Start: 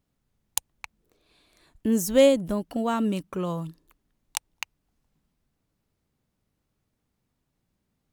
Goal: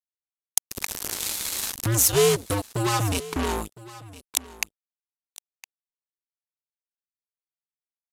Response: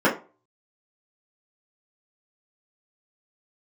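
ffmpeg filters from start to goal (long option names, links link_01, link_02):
-filter_complex "[0:a]asettb=1/sr,asplit=3[link_01][link_02][link_03];[link_01]atrim=end=0.704[link_04];[link_02]atrim=start=0.7:end=1.95,asetpts=PTS-STARTPTS,afade=type=in:duration=0.004:curve=qsin,afade=type=out:start_time=1.246:duration=0.004:curve=qsin,aeval=exprs='val(0)+0.5*0.0251*sgn(val(0))':channel_layout=same[link_05];[link_03]atrim=start=1.946[link_06];[link_04][link_05]acrossfade=duration=0.004:curve1=hsin:curve2=qsin[link_07];[link_07][link_06]acrossfade=duration=0.004:curve1=qsin:curve2=hsin,equalizer=frequency=730:width_type=o:width=0.27:gain=-14.5,asplit=2[link_08][link_09];[link_09]acompressor=threshold=-32dB:ratio=6,volume=2dB[link_10];[link_08][link_10]amix=inputs=2:normalize=0,afreqshift=-110,acrusher=bits=3:mix=0:aa=0.5,asoftclip=type=tanh:threshold=-15.5dB,bass=frequency=250:gain=-6,treble=frequency=4000:gain=9,aecho=1:1:1011:0.112,volume=2.5dB" -ar 32000 -c:a libvorbis -b:a 128k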